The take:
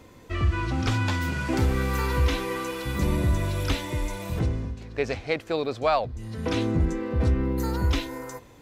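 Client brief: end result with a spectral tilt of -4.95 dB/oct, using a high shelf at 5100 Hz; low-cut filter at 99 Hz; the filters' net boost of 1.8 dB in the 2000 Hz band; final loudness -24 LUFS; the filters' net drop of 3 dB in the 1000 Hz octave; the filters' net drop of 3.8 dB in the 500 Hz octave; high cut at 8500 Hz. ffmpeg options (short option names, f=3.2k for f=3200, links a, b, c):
-af "highpass=99,lowpass=8.5k,equalizer=f=500:t=o:g=-4,equalizer=f=1k:t=o:g=-3.5,equalizer=f=2k:t=o:g=4.5,highshelf=f=5.1k:g=-6,volume=5.5dB"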